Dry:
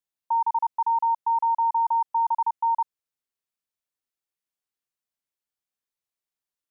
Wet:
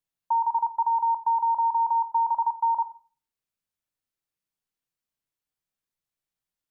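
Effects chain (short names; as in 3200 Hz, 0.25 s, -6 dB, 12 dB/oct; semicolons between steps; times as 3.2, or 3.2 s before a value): tone controls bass +7 dB, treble -1 dB; shoebox room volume 390 m³, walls furnished, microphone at 0.57 m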